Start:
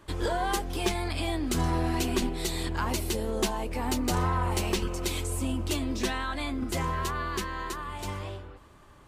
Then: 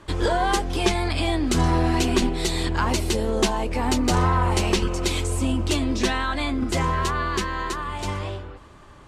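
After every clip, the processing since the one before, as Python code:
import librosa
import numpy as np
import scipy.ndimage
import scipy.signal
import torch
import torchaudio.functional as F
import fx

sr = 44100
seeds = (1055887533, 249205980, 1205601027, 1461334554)

y = scipy.signal.sosfilt(scipy.signal.butter(2, 8500.0, 'lowpass', fs=sr, output='sos'), x)
y = y * librosa.db_to_amplitude(7.0)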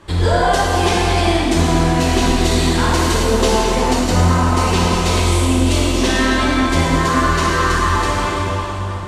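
y = fx.quant_float(x, sr, bits=8)
y = fx.rev_plate(y, sr, seeds[0], rt60_s=3.8, hf_ratio=0.8, predelay_ms=0, drr_db=-7.5)
y = fx.rider(y, sr, range_db=3, speed_s=0.5)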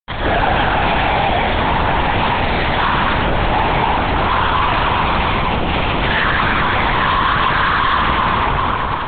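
y = fx.bandpass_edges(x, sr, low_hz=660.0, high_hz=2300.0)
y = fx.fuzz(y, sr, gain_db=29.0, gate_db=-38.0)
y = fx.lpc_vocoder(y, sr, seeds[1], excitation='whisper', order=8)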